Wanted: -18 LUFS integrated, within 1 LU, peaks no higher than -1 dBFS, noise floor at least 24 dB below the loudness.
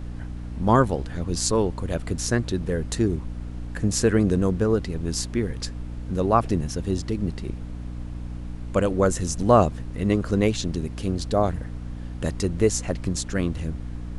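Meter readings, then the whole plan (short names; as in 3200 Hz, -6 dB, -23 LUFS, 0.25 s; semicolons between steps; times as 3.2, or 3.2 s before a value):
hum 60 Hz; harmonics up to 300 Hz; hum level -31 dBFS; noise floor -34 dBFS; noise floor target -49 dBFS; loudness -24.5 LUFS; peak -4.5 dBFS; loudness target -18.0 LUFS
-> notches 60/120/180/240/300 Hz; noise print and reduce 15 dB; gain +6.5 dB; limiter -1 dBFS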